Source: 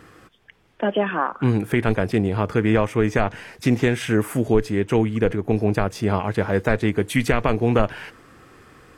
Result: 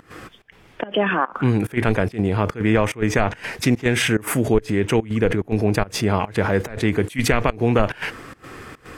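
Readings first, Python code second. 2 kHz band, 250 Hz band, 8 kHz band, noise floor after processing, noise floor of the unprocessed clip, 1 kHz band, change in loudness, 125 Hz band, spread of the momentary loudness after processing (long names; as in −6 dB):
+3.0 dB, 0.0 dB, +7.5 dB, −51 dBFS, −56 dBFS, +1.0 dB, +0.5 dB, +0.5 dB, 6 LU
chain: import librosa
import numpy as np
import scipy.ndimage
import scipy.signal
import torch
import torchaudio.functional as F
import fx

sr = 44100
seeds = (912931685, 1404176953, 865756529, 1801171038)

p1 = fx.over_compress(x, sr, threshold_db=-31.0, ratio=-1.0)
p2 = x + (p1 * librosa.db_to_amplitude(-2.0))
p3 = fx.peak_eq(p2, sr, hz=2200.0, db=2.5, octaves=0.77)
y = fx.volume_shaper(p3, sr, bpm=144, per_beat=1, depth_db=-21, release_ms=102.0, shape='slow start')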